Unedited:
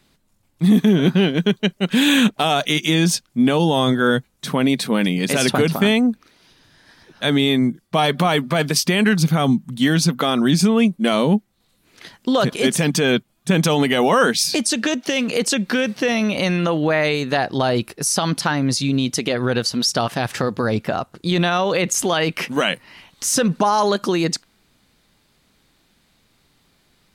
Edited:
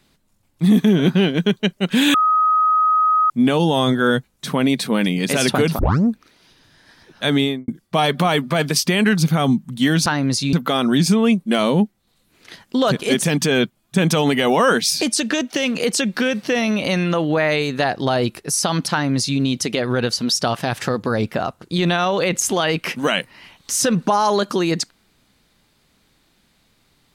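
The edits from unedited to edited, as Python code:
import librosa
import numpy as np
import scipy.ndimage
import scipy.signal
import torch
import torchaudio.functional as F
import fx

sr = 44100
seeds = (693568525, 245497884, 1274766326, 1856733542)

y = fx.studio_fade_out(x, sr, start_s=7.39, length_s=0.29)
y = fx.edit(y, sr, fx.bleep(start_s=2.14, length_s=1.16, hz=1260.0, db=-12.5),
    fx.tape_start(start_s=5.79, length_s=0.29),
    fx.duplicate(start_s=18.45, length_s=0.47, to_s=10.06), tone=tone)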